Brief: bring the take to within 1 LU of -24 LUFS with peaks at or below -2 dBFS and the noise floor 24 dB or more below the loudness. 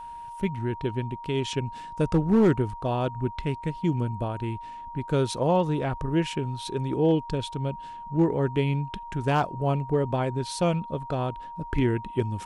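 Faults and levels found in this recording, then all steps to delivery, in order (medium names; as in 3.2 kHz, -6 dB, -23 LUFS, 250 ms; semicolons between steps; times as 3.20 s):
clipped samples 0.3%; clipping level -14.0 dBFS; steady tone 940 Hz; tone level -37 dBFS; loudness -27.0 LUFS; peak level -14.0 dBFS; loudness target -24.0 LUFS
-> clip repair -14 dBFS; band-stop 940 Hz, Q 30; trim +3 dB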